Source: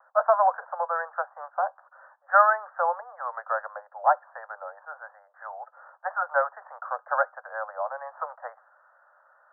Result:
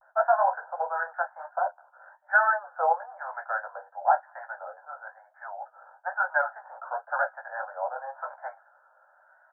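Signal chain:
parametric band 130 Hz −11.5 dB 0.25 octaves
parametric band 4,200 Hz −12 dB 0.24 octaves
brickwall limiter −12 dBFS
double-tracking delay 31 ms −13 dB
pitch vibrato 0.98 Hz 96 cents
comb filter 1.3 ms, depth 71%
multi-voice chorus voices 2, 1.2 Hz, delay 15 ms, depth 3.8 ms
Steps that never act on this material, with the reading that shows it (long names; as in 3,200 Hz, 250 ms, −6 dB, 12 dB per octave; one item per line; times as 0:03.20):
parametric band 130 Hz: nothing at its input below 450 Hz
parametric band 4,200 Hz: nothing at its input above 1,900 Hz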